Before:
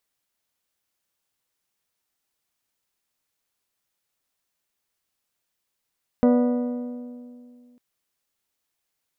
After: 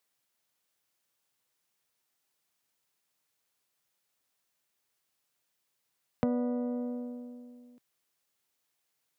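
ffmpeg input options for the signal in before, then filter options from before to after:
-f lavfi -i "aevalsrc='0.2*pow(10,-3*t/2.4)*sin(2*PI*245*t)+0.112*pow(10,-3*t/1.949)*sin(2*PI*490*t)+0.0631*pow(10,-3*t/1.846)*sin(2*PI*588*t)+0.0355*pow(10,-3*t/1.726)*sin(2*PI*735*t)+0.02*pow(10,-3*t/1.583)*sin(2*PI*980*t)+0.0112*pow(10,-3*t/1.481)*sin(2*PI*1225*t)+0.00631*pow(10,-3*t/1.402)*sin(2*PI*1470*t)+0.00355*pow(10,-3*t/1.286)*sin(2*PI*1960*t)':duration=1.55:sample_rate=44100"
-filter_complex "[0:a]acrossover=split=190[link_01][link_02];[link_01]bandpass=frequency=140:width_type=q:width=1.5:csg=0[link_03];[link_02]acompressor=threshold=-31dB:ratio=4[link_04];[link_03][link_04]amix=inputs=2:normalize=0"

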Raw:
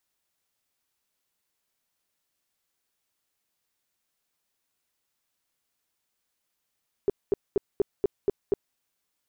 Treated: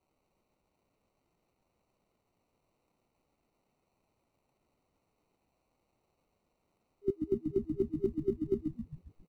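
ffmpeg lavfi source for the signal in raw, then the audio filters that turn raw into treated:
-f lavfi -i "aevalsrc='0.126*sin(2*PI*401*mod(t,0.24))*lt(mod(t,0.24),7/401)':duration=1.68:sample_rate=44100"
-filter_complex "[0:a]afftfilt=real='re*(1-between(b*sr/4096,400,1400))':imag='im*(1-between(b*sr/4096,400,1400))':win_size=4096:overlap=0.75,acrossover=split=140|450|740[link_01][link_02][link_03][link_04];[link_04]acrusher=samples=26:mix=1:aa=0.000001[link_05];[link_01][link_02][link_03][link_05]amix=inputs=4:normalize=0,asplit=8[link_06][link_07][link_08][link_09][link_10][link_11][link_12][link_13];[link_07]adelay=135,afreqshift=-80,volume=-5dB[link_14];[link_08]adelay=270,afreqshift=-160,volume=-10.2dB[link_15];[link_09]adelay=405,afreqshift=-240,volume=-15.4dB[link_16];[link_10]adelay=540,afreqshift=-320,volume=-20.6dB[link_17];[link_11]adelay=675,afreqshift=-400,volume=-25.8dB[link_18];[link_12]adelay=810,afreqshift=-480,volume=-31dB[link_19];[link_13]adelay=945,afreqshift=-560,volume=-36.2dB[link_20];[link_06][link_14][link_15][link_16][link_17][link_18][link_19][link_20]amix=inputs=8:normalize=0"

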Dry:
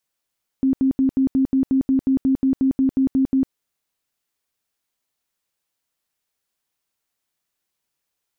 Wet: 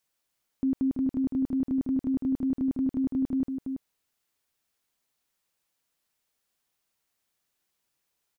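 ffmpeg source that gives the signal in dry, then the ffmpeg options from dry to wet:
-f lavfi -i "aevalsrc='0.2*sin(2*PI*266*mod(t,0.18))*lt(mod(t,0.18),27/266)':duration=2.88:sample_rate=44100"
-filter_complex "[0:a]alimiter=limit=-21.5dB:level=0:latency=1:release=44,asplit=2[link_01][link_02];[link_02]adelay=332.4,volume=-7dB,highshelf=frequency=4000:gain=-7.48[link_03];[link_01][link_03]amix=inputs=2:normalize=0"

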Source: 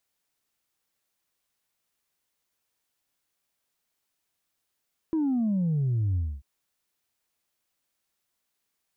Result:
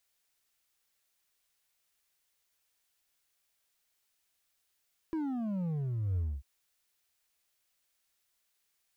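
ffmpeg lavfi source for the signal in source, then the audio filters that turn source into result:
-f lavfi -i "aevalsrc='0.0708*clip((1.29-t)/0.26,0,1)*tanh(1.06*sin(2*PI*330*1.29/log(65/330)*(exp(log(65/330)*t/1.29)-1)))/tanh(1.06)':duration=1.29:sample_rate=44100"
-filter_complex "[0:a]equalizer=frequency=125:width_type=o:width=1:gain=-7,equalizer=frequency=250:width_type=o:width=1:gain=-8,equalizer=frequency=500:width_type=o:width=1:gain=-3,equalizer=frequency=1000:width_type=o:width=1:gain=-4,asplit=2[link_01][link_02];[link_02]aeval=exprs='0.0119*(abs(mod(val(0)/0.0119+3,4)-2)-1)':channel_layout=same,volume=-9.5dB[link_03];[link_01][link_03]amix=inputs=2:normalize=0"

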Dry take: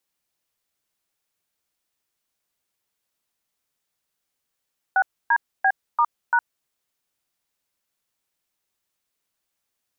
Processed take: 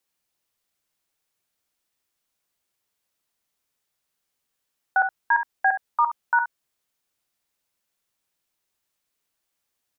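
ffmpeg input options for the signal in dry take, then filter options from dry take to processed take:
-f lavfi -i "aevalsrc='0.133*clip(min(mod(t,0.342),0.062-mod(t,0.342))/0.002,0,1)*(eq(floor(t/0.342),0)*(sin(2*PI*770*mod(t,0.342))+sin(2*PI*1477*mod(t,0.342)))+eq(floor(t/0.342),1)*(sin(2*PI*941*mod(t,0.342))+sin(2*PI*1633*mod(t,0.342)))+eq(floor(t/0.342),2)*(sin(2*PI*770*mod(t,0.342))+sin(2*PI*1633*mod(t,0.342)))+eq(floor(t/0.342),3)*(sin(2*PI*941*mod(t,0.342))+sin(2*PI*1209*mod(t,0.342)))+eq(floor(t/0.342),4)*(sin(2*PI*941*mod(t,0.342))+sin(2*PI*1477*mod(t,0.342))))':duration=1.71:sample_rate=44100"
-af "aecho=1:1:51|68:0.211|0.282"

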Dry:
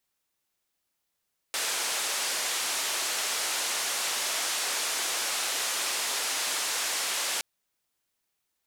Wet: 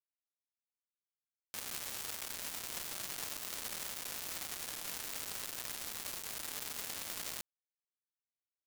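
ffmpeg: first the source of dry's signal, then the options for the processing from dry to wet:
-f lavfi -i "anoisesrc=color=white:duration=5.87:sample_rate=44100:seed=1,highpass=frequency=480,lowpass=frequency=8900,volume=-21.1dB"
-af "lowshelf=frequency=180:gain=-7.5,alimiter=level_in=4.5dB:limit=-24dB:level=0:latency=1:release=31,volume=-4.5dB,acrusher=bits=4:mix=0:aa=0.000001"

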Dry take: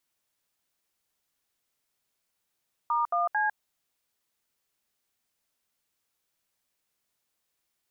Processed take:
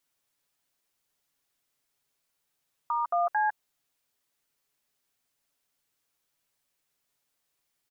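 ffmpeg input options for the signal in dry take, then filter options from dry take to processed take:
-f lavfi -i "aevalsrc='0.0501*clip(min(mod(t,0.223),0.152-mod(t,0.223))/0.002,0,1)*(eq(floor(t/0.223),0)*(sin(2*PI*941*mod(t,0.223))+sin(2*PI*1209*mod(t,0.223)))+eq(floor(t/0.223),1)*(sin(2*PI*697*mod(t,0.223))+sin(2*PI*1209*mod(t,0.223)))+eq(floor(t/0.223),2)*(sin(2*PI*852*mod(t,0.223))+sin(2*PI*1633*mod(t,0.223))))':duration=0.669:sample_rate=44100"
-af "aecho=1:1:7.1:0.41"

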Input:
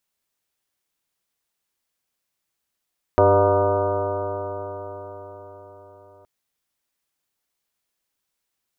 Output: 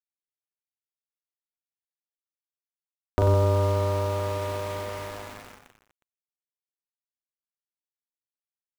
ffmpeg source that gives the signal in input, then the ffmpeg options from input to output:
-f lavfi -i "aevalsrc='0.0944*pow(10,-3*t/4.95)*sin(2*PI*95.92*t)+0.00944*pow(10,-3*t/4.95)*sin(2*PI*192.59*t)+0.0447*pow(10,-3*t/4.95)*sin(2*PI*290.74*t)+0.119*pow(10,-3*t/4.95)*sin(2*PI*391.09*t)+0.112*pow(10,-3*t/4.95)*sin(2*PI*494.32*t)+0.168*pow(10,-3*t/4.95)*sin(2*PI*601.1*t)+0.0794*pow(10,-3*t/4.95)*sin(2*PI*712.04*t)+0.0188*pow(10,-3*t/4.95)*sin(2*PI*827.71*t)+0.0944*pow(10,-3*t/4.95)*sin(2*PI*948.66*t)+0.015*pow(10,-3*t/4.95)*sin(2*PI*1075.35*t)+0.0596*pow(10,-3*t/4.95)*sin(2*PI*1208.25*t)+0.01*pow(10,-3*t/4.95)*sin(2*PI*1347.73*t)+0.015*pow(10,-3*t/4.95)*sin(2*PI*1494.17*t)':duration=3.07:sample_rate=44100"
-filter_complex "[0:a]acrossover=split=300[link_01][link_02];[link_02]acompressor=threshold=-32dB:ratio=3[link_03];[link_01][link_03]amix=inputs=2:normalize=0,aeval=exprs='val(0)*gte(abs(val(0)),0.0188)':channel_layout=same,aecho=1:1:40|92|159.6|247.5|361.7:0.631|0.398|0.251|0.158|0.1"

